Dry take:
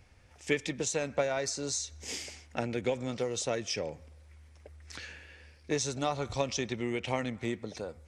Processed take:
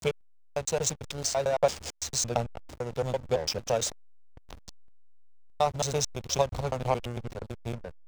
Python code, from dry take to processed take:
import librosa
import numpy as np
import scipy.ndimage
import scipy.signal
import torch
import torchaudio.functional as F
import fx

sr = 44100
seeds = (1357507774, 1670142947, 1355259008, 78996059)

y = fx.block_reorder(x, sr, ms=112.0, group=5)
y = fx.fixed_phaser(y, sr, hz=750.0, stages=4)
y = fx.backlash(y, sr, play_db=-34.5)
y = F.gain(torch.from_numpy(y), 8.5).numpy()